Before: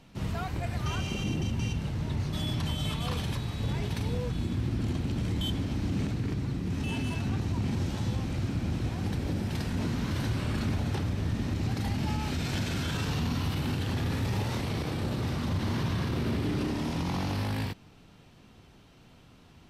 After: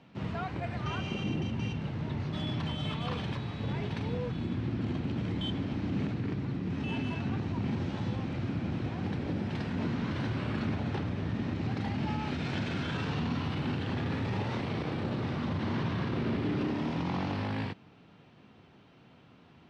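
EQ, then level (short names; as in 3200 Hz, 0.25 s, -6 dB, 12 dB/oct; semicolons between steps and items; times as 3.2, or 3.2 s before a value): BPF 120–3100 Hz; 0.0 dB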